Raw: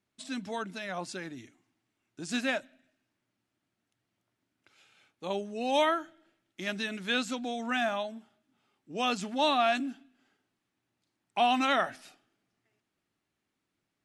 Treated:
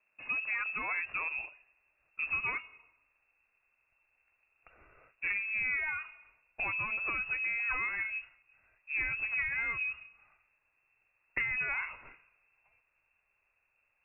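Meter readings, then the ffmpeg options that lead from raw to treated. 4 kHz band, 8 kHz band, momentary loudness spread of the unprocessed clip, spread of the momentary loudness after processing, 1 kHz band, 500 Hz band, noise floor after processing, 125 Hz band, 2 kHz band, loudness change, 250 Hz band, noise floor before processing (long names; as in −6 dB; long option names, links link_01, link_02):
below −20 dB, below −30 dB, 14 LU, 9 LU, −13.0 dB, −22.5 dB, −78 dBFS, −6.5 dB, +4.5 dB, −2.0 dB, −23.0 dB, −84 dBFS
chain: -filter_complex "[0:a]aeval=exprs='if(lt(val(0),0),0.447*val(0),val(0))':channel_layout=same,lowshelf=frequency=140:gain=10.5,acrossover=split=840[link_01][link_02];[link_02]alimiter=level_in=4dB:limit=-24dB:level=0:latency=1:release=144,volume=-4dB[link_03];[link_01][link_03]amix=inputs=2:normalize=0,acompressor=threshold=-36dB:ratio=6,highpass=frequency=52:poles=1,bandreject=frequency=300.9:width_type=h:width=4,bandreject=frequency=601.8:width_type=h:width=4,bandreject=frequency=902.7:width_type=h:width=4,bandreject=frequency=1203.6:width_type=h:width=4,bandreject=frequency=1504.5:width_type=h:width=4,bandreject=frequency=1805.4:width_type=h:width=4,lowpass=frequency=2400:width_type=q:width=0.5098,lowpass=frequency=2400:width_type=q:width=0.6013,lowpass=frequency=2400:width_type=q:width=0.9,lowpass=frequency=2400:width_type=q:width=2.563,afreqshift=-2800,asubboost=boost=6:cutoff=85,volume=8dB"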